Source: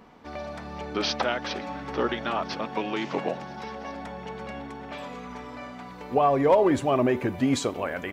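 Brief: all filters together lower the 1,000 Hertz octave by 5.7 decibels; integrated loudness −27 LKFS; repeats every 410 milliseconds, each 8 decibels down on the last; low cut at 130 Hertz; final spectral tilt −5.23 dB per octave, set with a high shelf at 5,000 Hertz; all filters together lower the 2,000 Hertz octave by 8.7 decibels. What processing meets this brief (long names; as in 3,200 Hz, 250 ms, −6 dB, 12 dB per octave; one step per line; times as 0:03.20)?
high-pass filter 130 Hz
parametric band 1,000 Hz −6 dB
parametric band 2,000 Hz −8 dB
high-shelf EQ 5,000 Hz −8.5 dB
repeating echo 410 ms, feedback 40%, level −8 dB
level +1 dB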